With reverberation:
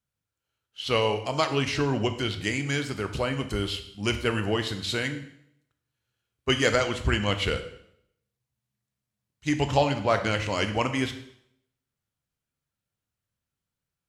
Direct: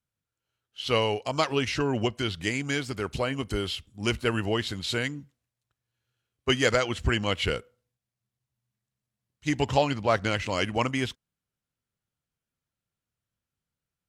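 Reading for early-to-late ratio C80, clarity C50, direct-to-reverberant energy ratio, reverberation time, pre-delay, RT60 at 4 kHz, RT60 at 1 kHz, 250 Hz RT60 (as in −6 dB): 13.0 dB, 10.5 dB, 7.5 dB, 0.70 s, 12 ms, 0.65 s, 0.70 s, 0.75 s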